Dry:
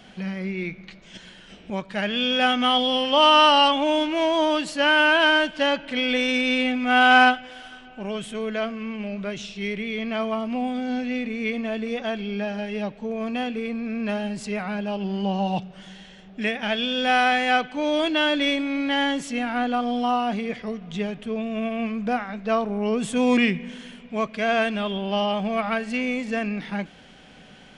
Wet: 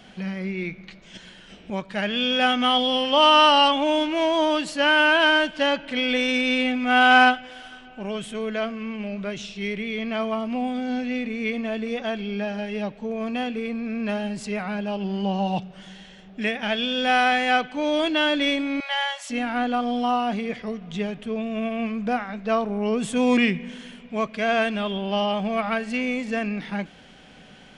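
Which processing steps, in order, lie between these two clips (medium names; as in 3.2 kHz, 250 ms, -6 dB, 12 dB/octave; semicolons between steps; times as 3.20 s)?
18.80–19.30 s: Chebyshev high-pass 580 Hz, order 8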